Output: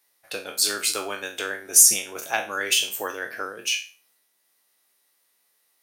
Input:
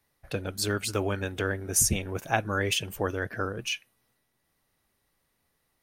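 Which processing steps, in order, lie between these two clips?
spectral trails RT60 0.35 s; HPF 380 Hz 12 dB/oct; in parallel at -11.5 dB: hard clip -15 dBFS, distortion -20 dB; on the sum: high shelf 2600 Hz +11.5 dB; gain -4 dB

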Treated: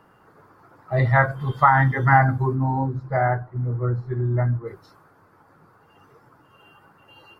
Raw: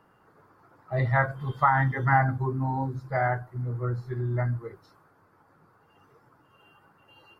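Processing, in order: 2.54–4.66 LPF 1500 Hz -> 1100 Hz 6 dB/oct; gain +6 dB

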